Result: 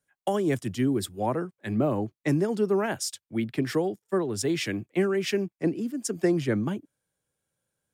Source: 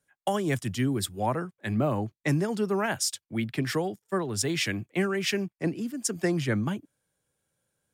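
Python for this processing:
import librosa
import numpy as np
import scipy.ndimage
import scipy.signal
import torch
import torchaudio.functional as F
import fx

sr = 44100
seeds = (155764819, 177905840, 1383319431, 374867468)

y = fx.dynamic_eq(x, sr, hz=360.0, q=0.82, threshold_db=-41.0, ratio=4.0, max_db=8)
y = y * librosa.db_to_amplitude(-3.5)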